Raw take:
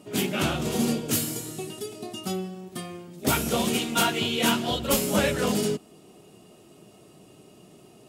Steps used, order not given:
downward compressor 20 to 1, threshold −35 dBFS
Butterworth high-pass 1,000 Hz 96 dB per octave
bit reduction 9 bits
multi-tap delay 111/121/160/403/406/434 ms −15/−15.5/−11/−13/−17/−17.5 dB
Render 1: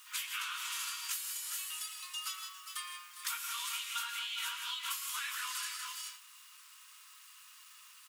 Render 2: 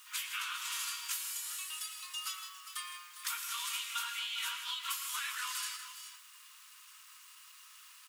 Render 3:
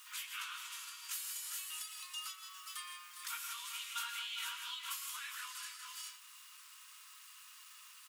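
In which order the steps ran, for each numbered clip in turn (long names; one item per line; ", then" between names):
multi-tap delay, then bit reduction, then Butterworth high-pass, then downward compressor
bit reduction, then Butterworth high-pass, then downward compressor, then multi-tap delay
multi-tap delay, then bit reduction, then downward compressor, then Butterworth high-pass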